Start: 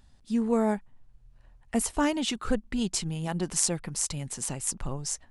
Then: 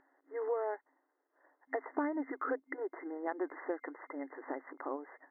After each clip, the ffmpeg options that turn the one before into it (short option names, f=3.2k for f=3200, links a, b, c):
-af "afftfilt=real='re*between(b*sr/4096,260,2100)':imag='im*between(b*sr/4096,260,2100)':win_size=4096:overlap=0.75,acompressor=threshold=-34dB:ratio=6,volume=2dB"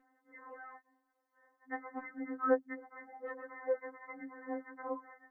-af "afftfilt=real='re*3.46*eq(mod(b,12),0)':imag='im*3.46*eq(mod(b,12),0)':win_size=2048:overlap=0.75,volume=2dB"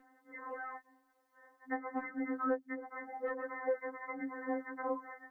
-filter_complex "[0:a]acrossover=split=640|1700[a][b][c];[a]acompressor=threshold=-42dB:ratio=4[d];[b]acompressor=threshold=-48dB:ratio=4[e];[c]acompressor=threshold=-57dB:ratio=4[f];[d][e][f]amix=inputs=3:normalize=0,volume=7dB"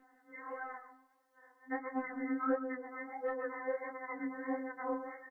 -filter_complex "[0:a]asplit=2[a][b];[b]adelay=136,lowpass=f=1.9k:p=1,volume=-9dB,asplit=2[c][d];[d]adelay=136,lowpass=f=1.9k:p=1,volume=0.24,asplit=2[e][f];[f]adelay=136,lowpass=f=1.9k:p=1,volume=0.24[g];[a][c][e][g]amix=inputs=4:normalize=0,flanger=delay=19:depth=7.6:speed=1.5,volume=2.5dB"